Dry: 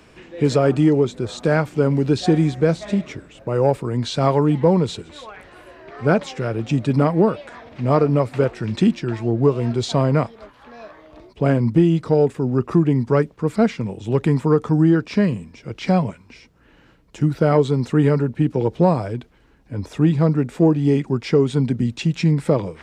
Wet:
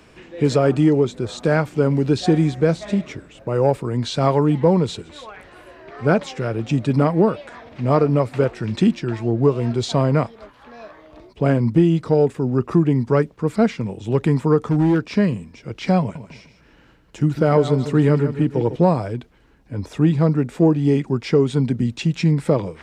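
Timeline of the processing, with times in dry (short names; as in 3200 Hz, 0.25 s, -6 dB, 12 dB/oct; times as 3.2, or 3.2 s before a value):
14.64–15.1 hard clip -12 dBFS
16–18.76 feedback echo 0.152 s, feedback 35%, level -11 dB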